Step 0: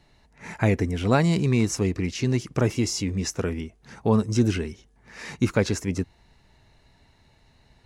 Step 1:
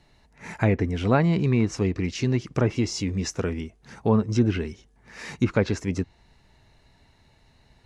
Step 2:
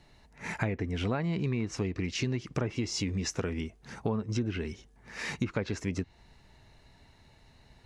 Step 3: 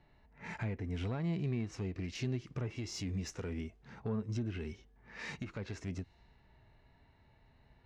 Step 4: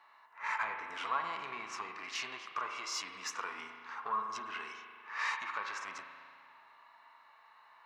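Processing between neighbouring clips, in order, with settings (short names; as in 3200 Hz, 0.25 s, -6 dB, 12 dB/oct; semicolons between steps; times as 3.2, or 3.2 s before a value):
treble ducked by the level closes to 2500 Hz, closed at -16.5 dBFS
dynamic EQ 2600 Hz, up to +3 dB, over -45 dBFS, Q 0.75; compressor 6:1, threshold -28 dBFS, peak gain reduction 13 dB
low-pass opened by the level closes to 2300 Hz, open at -28 dBFS; tube stage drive 21 dB, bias 0.3; harmonic-percussive split percussive -8 dB; gain -2.5 dB
resonant high-pass 1100 Hz, resonance Q 7.1; reverb RT60 2.1 s, pre-delay 37 ms, DRR 4.5 dB; gain +5 dB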